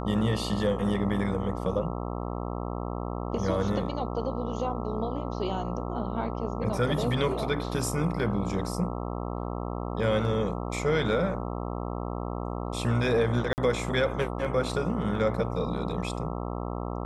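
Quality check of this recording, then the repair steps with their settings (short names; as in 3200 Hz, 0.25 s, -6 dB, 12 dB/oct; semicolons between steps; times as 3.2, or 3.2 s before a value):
buzz 60 Hz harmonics 22 -33 dBFS
13.53–13.58 gap 49 ms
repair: de-hum 60 Hz, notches 22; interpolate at 13.53, 49 ms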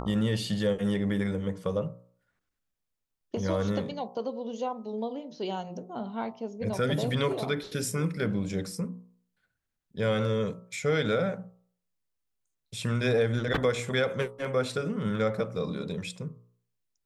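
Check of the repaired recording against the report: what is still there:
none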